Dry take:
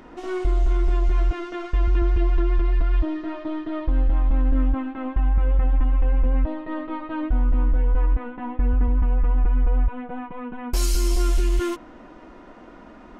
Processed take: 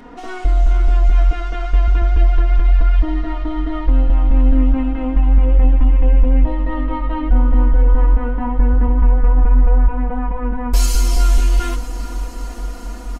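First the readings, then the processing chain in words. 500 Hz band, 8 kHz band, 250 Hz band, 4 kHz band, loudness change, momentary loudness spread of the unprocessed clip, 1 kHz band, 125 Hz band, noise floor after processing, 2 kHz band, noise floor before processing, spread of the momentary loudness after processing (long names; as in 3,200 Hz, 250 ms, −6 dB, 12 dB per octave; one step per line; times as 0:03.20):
+3.5 dB, +5.5 dB, +5.5 dB, +5.5 dB, +7.0 dB, 8 LU, +7.0 dB, +7.5 dB, −29 dBFS, +5.5 dB, −45 dBFS, 10 LU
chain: comb filter 4.2 ms, depth 78%
on a send: feedback delay with all-pass diffusion 479 ms, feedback 79%, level −14 dB
on the sum: level +3 dB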